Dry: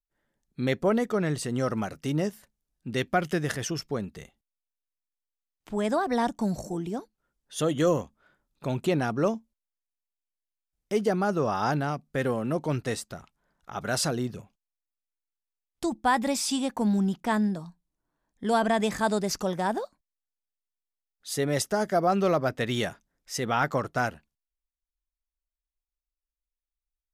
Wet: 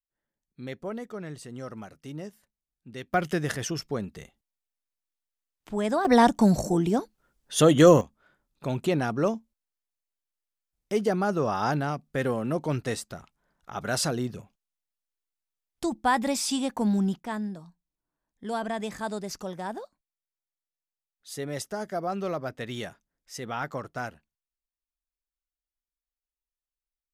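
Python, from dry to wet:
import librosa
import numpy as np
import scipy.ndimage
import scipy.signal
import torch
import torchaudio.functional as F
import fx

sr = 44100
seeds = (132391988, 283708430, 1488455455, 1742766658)

y = fx.gain(x, sr, db=fx.steps((0.0, -11.0), (3.14, 0.0), (6.05, 8.0), (8.01, 0.0), (17.19, -7.0)))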